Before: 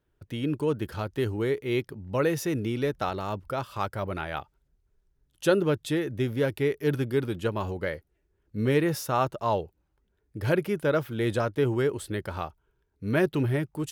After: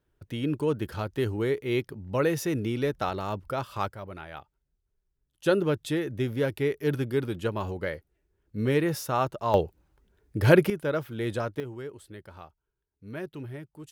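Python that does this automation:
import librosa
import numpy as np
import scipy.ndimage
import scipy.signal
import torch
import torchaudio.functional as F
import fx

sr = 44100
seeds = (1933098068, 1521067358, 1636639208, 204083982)

y = fx.gain(x, sr, db=fx.steps((0.0, 0.0), (3.93, -8.5), (5.46, -1.0), (9.54, 7.0), (10.7, -3.5), (11.6, -13.0)))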